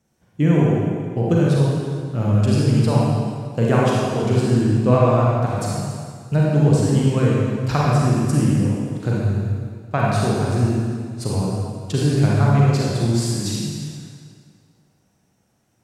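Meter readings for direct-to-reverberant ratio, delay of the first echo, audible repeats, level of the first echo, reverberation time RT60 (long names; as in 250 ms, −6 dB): −5.5 dB, no echo audible, no echo audible, no echo audible, 2.0 s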